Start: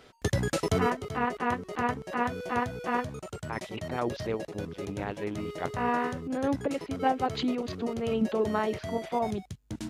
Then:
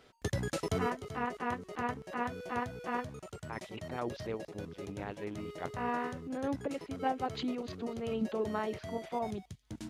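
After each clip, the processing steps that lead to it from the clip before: thin delay 0.271 s, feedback 70%, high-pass 3700 Hz, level -21.5 dB; gain -6.5 dB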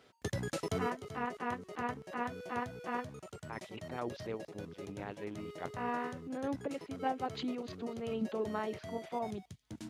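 HPF 83 Hz; gain -2 dB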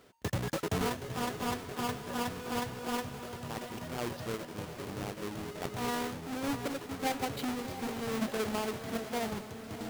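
half-waves squared off; diffused feedback echo 0.712 s, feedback 52%, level -9.5 dB; gain -1.5 dB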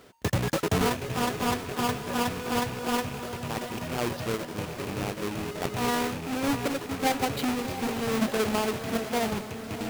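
rattling part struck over -43 dBFS, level -40 dBFS; gain +7 dB

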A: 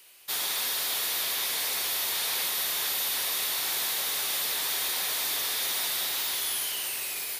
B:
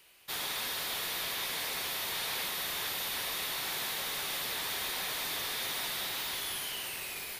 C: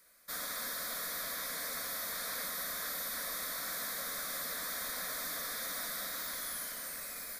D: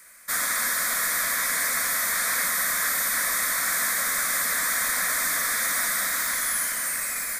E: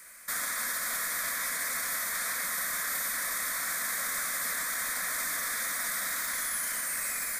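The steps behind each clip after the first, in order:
tone controls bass +7 dB, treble -7 dB; gain -2 dB
fixed phaser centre 570 Hz, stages 8
graphic EQ 500/1000/2000/4000/8000 Hz -4/+3/+9/-5/+10 dB; gain +9 dB
limiter -23.5 dBFS, peak gain reduction 10 dB

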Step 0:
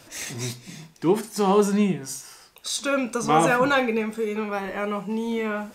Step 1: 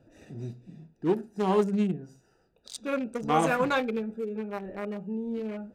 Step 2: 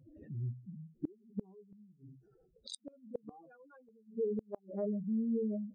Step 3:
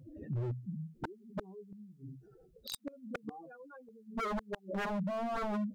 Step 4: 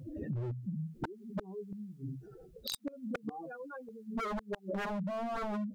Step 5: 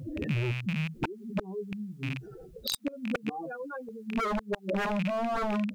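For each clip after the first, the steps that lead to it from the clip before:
Wiener smoothing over 41 samples; gain -4.5 dB
spectral contrast raised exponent 3.3; flipped gate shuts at -26 dBFS, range -33 dB
wavefolder -37 dBFS; gain +7 dB
compressor, threshold -42 dBFS, peak gain reduction 9 dB; gain +7.5 dB
rattling part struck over -41 dBFS, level -32 dBFS; gain +6.5 dB

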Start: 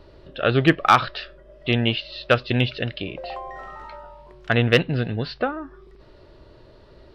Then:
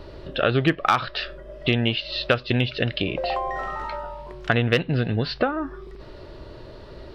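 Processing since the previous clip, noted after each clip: compressor 3:1, threshold -28 dBFS, peak gain reduction 14 dB; gain +8 dB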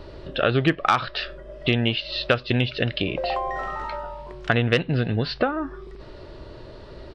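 downsampling 22050 Hz

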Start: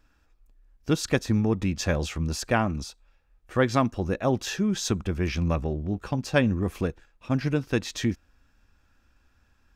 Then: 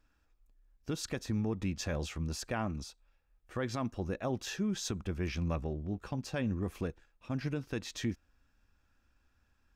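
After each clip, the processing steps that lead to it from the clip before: limiter -16 dBFS, peak gain reduction 8 dB; gain -8 dB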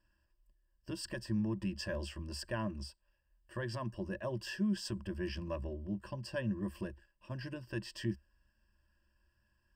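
ripple EQ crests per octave 1.3, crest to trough 17 dB; gain -6.5 dB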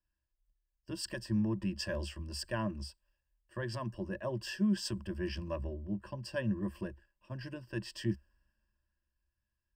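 three-band expander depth 40%; gain +1.5 dB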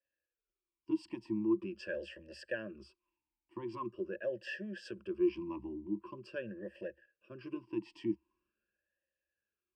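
in parallel at 0 dB: compressor, threshold -40 dBFS, peak gain reduction 13.5 dB; on the sum: vowel sweep e-u 0.44 Hz; gain +6.5 dB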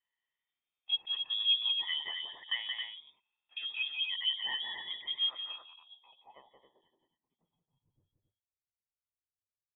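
inverted band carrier 3600 Hz; loudspeakers at several distances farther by 60 m -5 dB, 93 m -6 dB; low-pass sweep 2700 Hz -> 100 Hz, 5.14–8.03; gain -2 dB

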